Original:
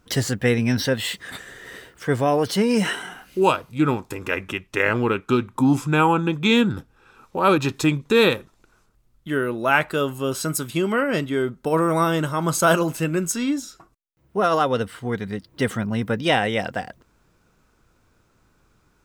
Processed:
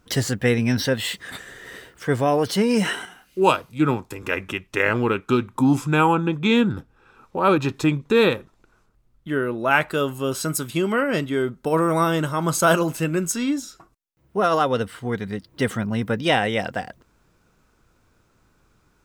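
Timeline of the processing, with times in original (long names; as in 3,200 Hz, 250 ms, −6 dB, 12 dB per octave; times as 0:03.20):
0:03.05–0:04.23: multiband upward and downward expander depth 40%
0:06.15–0:09.71: high-shelf EQ 3,300 Hz −7 dB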